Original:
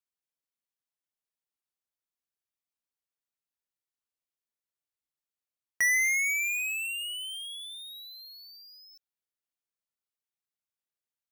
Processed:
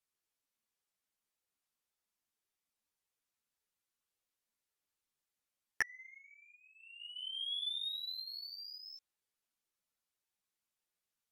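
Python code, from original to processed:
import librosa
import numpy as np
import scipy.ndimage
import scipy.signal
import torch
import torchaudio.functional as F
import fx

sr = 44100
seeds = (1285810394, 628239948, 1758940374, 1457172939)

y = fx.env_lowpass_down(x, sr, base_hz=310.0, full_db=-30.5)
y = fx.ensemble(y, sr)
y = F.gain(torch.from_numpy(y), 6.5).numpy()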